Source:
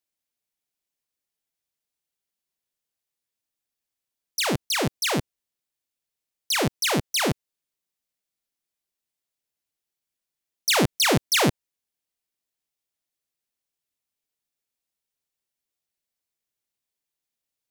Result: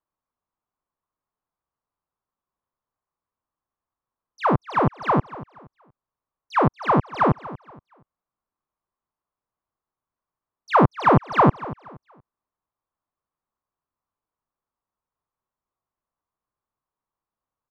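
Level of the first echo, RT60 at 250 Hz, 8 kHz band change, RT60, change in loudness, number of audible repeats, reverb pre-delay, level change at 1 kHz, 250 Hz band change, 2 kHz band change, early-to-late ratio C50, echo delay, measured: -17.0 dB, no reverb, under -30 dB, no reverb, +2.0 dB, 2, no reverb, +10.5 dB, +4.5 dB, -3.0 dB, no reverb, 236 ms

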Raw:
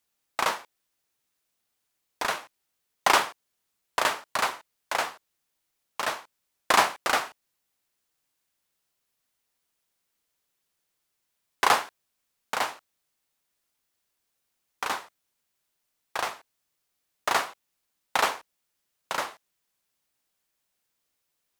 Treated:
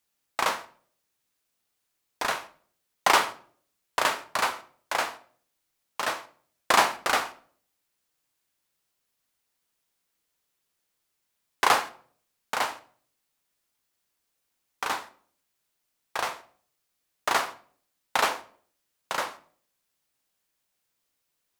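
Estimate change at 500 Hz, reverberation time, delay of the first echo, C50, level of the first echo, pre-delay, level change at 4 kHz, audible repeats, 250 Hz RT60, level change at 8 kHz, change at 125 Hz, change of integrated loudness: +0.5 dB, 0.50 s, no echo, 16.0 dB, no echo, 12 ms, +0.5 dB, no echo, 0.60 s, 0.0 dB, +0.5 dB, 0.0 dB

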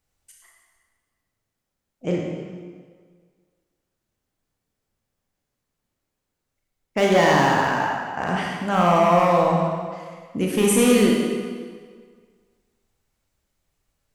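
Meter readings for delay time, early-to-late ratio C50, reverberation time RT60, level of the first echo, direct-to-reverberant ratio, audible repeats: no echo, 0.0 dB, 1.7 s, no echo, -2.0 dB, no echo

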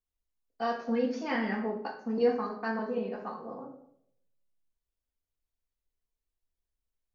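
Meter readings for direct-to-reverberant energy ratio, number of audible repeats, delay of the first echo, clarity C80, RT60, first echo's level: -2.0 dB, no echo, no echo, 11.0 dB, 0.70 s, no echo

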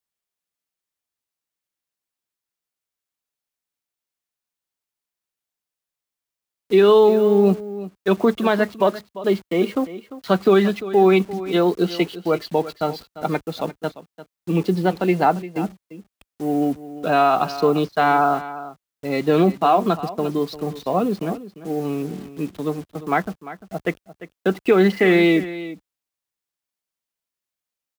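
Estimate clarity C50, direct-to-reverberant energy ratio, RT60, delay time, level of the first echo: no reverb, no reverb, no reverb, 347 ms, -15.0 dB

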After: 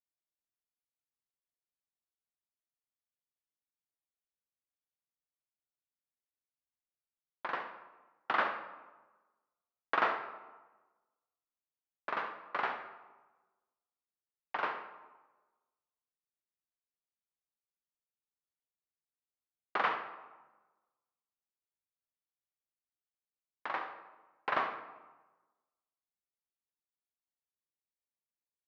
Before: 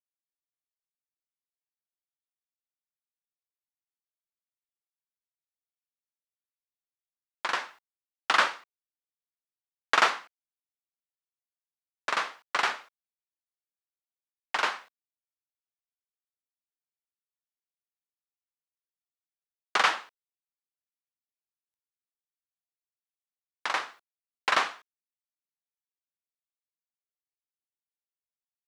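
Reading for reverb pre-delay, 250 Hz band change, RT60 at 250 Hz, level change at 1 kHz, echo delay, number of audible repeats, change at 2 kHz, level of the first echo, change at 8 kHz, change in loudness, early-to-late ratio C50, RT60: 10 ms, -2.0 dB, 1.2 s, -6.0 dB, 69 ms, 1, -9.0 dB, -12.5 dB, under -30 dB, -8.5 dB, 7.5 dB, 1.2 s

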